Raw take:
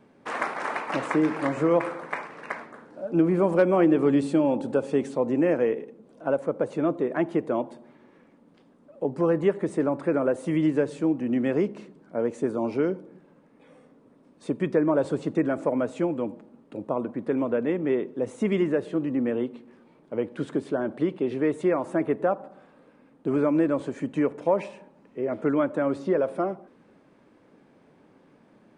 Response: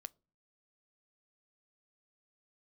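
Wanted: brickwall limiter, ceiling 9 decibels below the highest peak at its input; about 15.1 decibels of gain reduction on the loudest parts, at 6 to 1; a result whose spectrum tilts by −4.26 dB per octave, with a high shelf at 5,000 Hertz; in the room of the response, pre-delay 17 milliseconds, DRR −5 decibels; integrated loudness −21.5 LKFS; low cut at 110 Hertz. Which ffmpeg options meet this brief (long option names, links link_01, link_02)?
-filter_complex "[0:a]highpass=110,highshelf=frequency=5000:gain=-7.5,acompressor=threshold=-33dB:ratio=6,alimiter=level_in=4dB:limit=-24dB:level=0:latency=1,volume=-4dB,asplit=2[link_01][link_02];[1:a]atrim=start_sample=2205,adelay=17[link_03];[link_02][link_03]afir=irnorm=-1:irlink=0,volume=10.5dB[link_04];[link_01][link_04]amix=inputs=2:normalize=0,volume=11.5dB"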